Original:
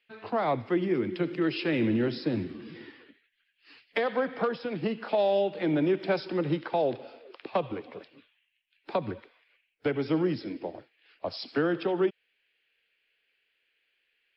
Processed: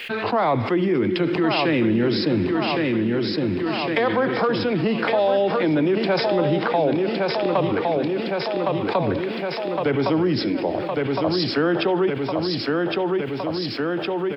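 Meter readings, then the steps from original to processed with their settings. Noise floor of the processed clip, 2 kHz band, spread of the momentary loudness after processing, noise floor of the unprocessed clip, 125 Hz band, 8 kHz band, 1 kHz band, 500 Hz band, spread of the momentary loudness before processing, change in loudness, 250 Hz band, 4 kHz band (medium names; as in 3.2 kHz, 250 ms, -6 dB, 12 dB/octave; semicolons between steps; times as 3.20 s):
-28 dBFS, +10.5 dB, 5 LU, -76 dBFS, +10.5 dB, no reading, +10.5 dB, +9.0 dB, 13 LU, +7.5 dB, +9.5 dB, +13.5 dB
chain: dynamic bell 1 kHz, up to +4 dB, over -42 dBFS, Q 2.7; on a send: feedback delay 1112 ms, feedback 46%, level -7.5 dB; on the sum: level flattener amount 70%; trim +3.5 dB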